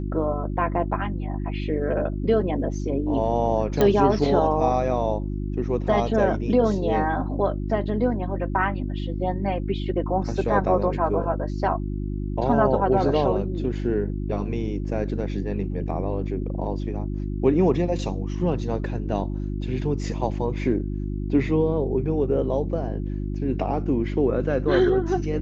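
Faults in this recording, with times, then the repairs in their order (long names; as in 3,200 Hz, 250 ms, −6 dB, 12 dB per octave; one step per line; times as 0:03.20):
mains hum 50 Hz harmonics 7 −28 dBFS
0:03.81: click −8 dBFS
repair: click removal
hum removal 50 Hz, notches 7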